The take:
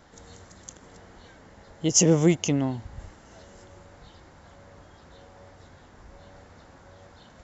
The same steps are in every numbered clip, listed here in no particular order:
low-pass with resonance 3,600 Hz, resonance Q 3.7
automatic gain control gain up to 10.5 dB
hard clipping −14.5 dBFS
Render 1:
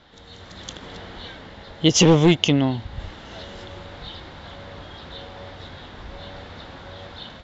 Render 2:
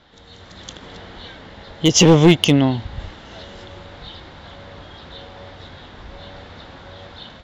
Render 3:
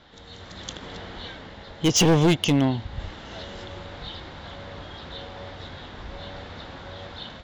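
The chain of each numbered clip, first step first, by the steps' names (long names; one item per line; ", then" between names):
hard clipping, then low-pass with resonance, then automatic gain control
low-pass with resonance, then hard clipping, then automatic gain control
low-pass with resonance, then automatic gain control, then hard clipping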